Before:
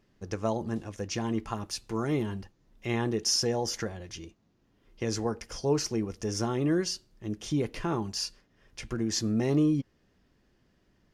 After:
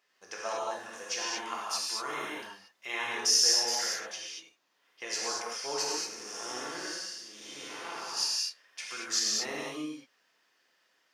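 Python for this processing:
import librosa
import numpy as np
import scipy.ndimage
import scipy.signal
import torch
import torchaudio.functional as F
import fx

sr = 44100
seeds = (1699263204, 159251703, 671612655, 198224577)

y = fx.spec_blur(x, sr, span_ms=300.0, at=(5.82, 8.16), fade=0.02)
y = scipy.signal.sosfilt(scipy.signal.butter(2, 1000.0, 'highpass', fs=sr, output='sos'), y)
y = fx.rev_gated(y, sr, seeds[0], gate_ms=260, shape='flat', drr_db=-5.0)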